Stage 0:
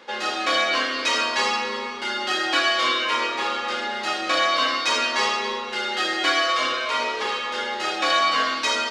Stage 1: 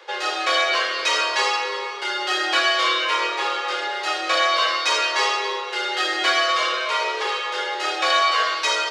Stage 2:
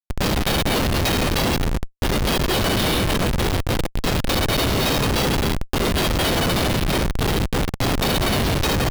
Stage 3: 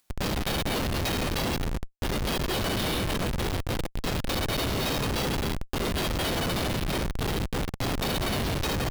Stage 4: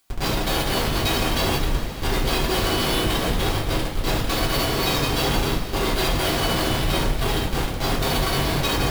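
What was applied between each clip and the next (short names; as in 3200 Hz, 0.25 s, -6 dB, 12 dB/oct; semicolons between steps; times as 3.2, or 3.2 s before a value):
steep high-pass 340 Hz 72 dB/oct; gain +1.5 dB
EQ curve 480 Hz 0 dB, 1300 Hz -15 dB, 3400 Hz +13 dB; compressor 12:1, threshold -14 dBFS, peak gain reduction 7.5 dB; Schmitt trigger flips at -14 dBFS
upward compressor, threshold -37 dBFS; gain -8 dB
two-slope reverb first 0.28 s, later 4.7 s, from -19 dB, DRR -5.5 dB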